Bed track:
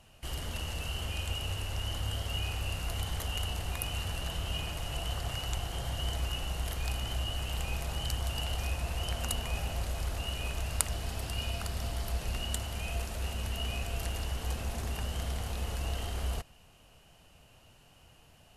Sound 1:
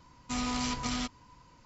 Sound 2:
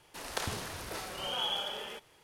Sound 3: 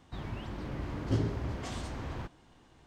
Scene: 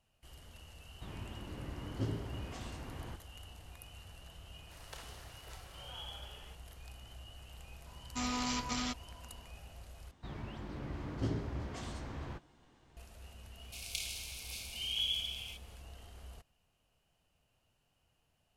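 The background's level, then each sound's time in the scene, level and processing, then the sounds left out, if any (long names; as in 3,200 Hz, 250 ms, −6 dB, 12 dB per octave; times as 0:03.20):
bed track −17.5 dB
0:00.89: mix in 3 −7 dB
0:04.56: mix in 2 −14 dB + high-pass filter 430 Hz 6 dB per octave
0:07.86: mix in 1 −2.5 dB + low-shelf EQ 170 Hz −5 dB
0:10.11: overwrite with 3 −5 dB + double-tracking delay 14 ms −12 dB
0:13.58: mix in 2 + linear-phase brick-wall high-pass 2,100 Hz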